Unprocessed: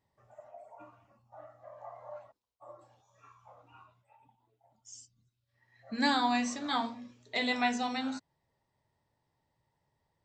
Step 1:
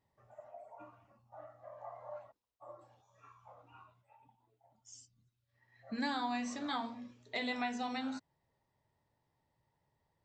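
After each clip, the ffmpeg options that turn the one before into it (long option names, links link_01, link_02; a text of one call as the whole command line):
ffmpeg -i in.wav -af "highshelf=frequency=4800:gain=-6,acompressor=threshold=-35dB:ratio=2.5,volume=-1dB" out.wav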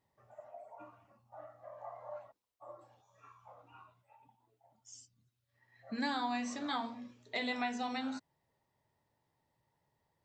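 ffmpeg -i in.wav -af "lowshelf=frequency=82:gain=-7,volume=1dB" out.wav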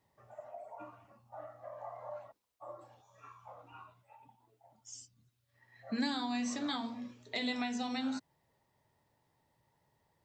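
ffmpeg -i in.wav -filter_complex "[0:a]acrossover=split=340|3000[link_01][link_02][link_03];[link_02]acompressor=threshold=-48dB:ratio=2.5[link_04];[link_01][link_04][link_03]amix=inputs=3:normalize=0,volume=4.5dB" out.wav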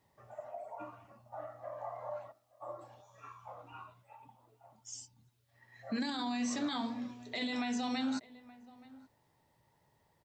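ffmpeg -i in.wav -filter_complex "[0:a]asplit=2[link_01][link_02];[link_02]adelay=874.6,volume=-22dB,highshelf=frequency=4000:gain=-19.7[link_03];[link_01][link_03]amix=inputs=2:normalize=0,alimiter=level_in=6.5dB:limit=-24dB:level=0:latency=1:release=12,volume=-6.5dB,volume=3dB" out.wav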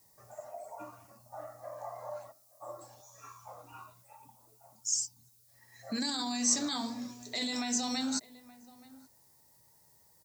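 ffmpeg -i in.wav -af "aexciter=amount=6:drive=6.1:freq=4500" out.wav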